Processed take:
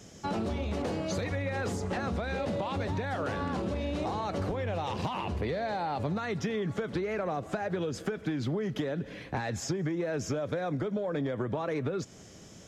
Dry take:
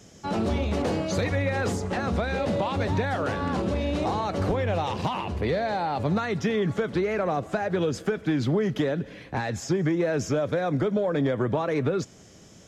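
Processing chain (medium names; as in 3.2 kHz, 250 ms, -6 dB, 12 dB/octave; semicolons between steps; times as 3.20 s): compression, threshold -29 dBFS, peak gain reduction 9 dB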